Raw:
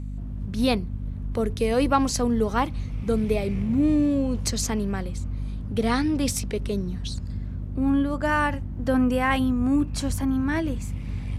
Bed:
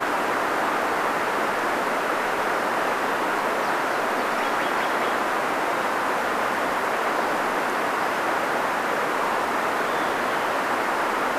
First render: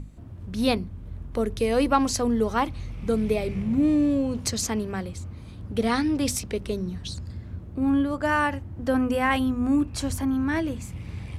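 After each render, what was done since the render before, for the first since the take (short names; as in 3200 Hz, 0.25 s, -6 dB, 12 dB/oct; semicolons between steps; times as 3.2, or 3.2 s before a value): notches 50/100/150/200/250 Hz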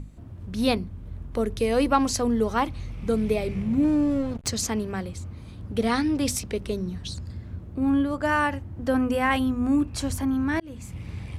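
3.84–4.48 backlash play -25 dBFS; 10.6–11.06 fade in equal-power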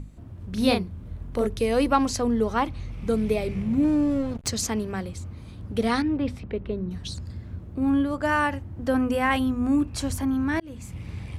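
0.49–1.47 doubler 38 ms -5 dB; 2.05–2.93 high shelf 6100 Hz -5.5 dB; 6.02–6.91 air absorption 460 m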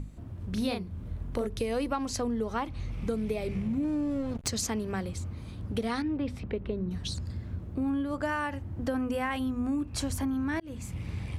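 compressor 5:1, threshold -28 dBFS, peak gain reduction 12.5 dB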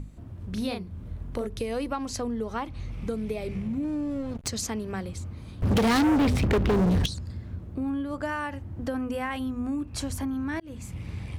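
5.62–7.06 sample leveller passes 5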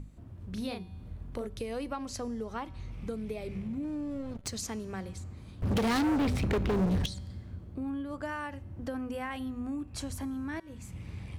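resonator 190 Hz, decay 1.3 s, mix 50%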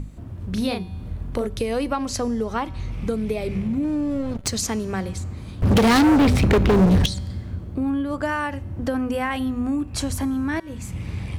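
gain +12 dB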